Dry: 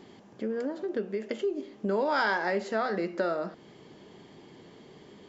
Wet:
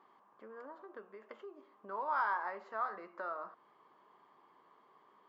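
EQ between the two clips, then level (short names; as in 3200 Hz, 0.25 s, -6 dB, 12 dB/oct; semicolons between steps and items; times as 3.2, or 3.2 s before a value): band-pass 1100 Hz, Q 6.5; +3.5 dB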